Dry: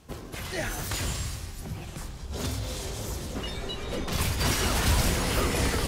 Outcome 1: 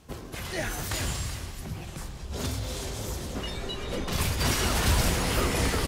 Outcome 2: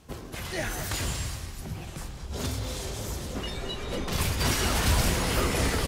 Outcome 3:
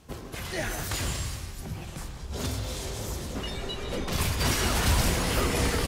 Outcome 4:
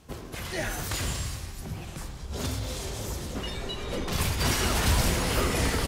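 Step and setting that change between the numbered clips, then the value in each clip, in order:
far-end echo of a speakerphone, delay time: 380, 220, 150, 80 milliseconds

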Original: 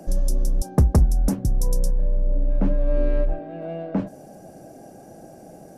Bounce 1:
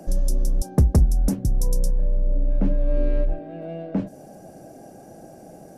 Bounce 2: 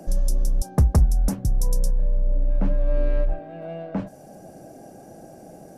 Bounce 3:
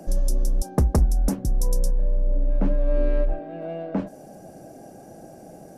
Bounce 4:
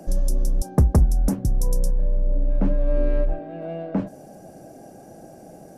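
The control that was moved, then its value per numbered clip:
dynamic equaliser, frequency: 1,100, 320, 110, 3,900 Hertz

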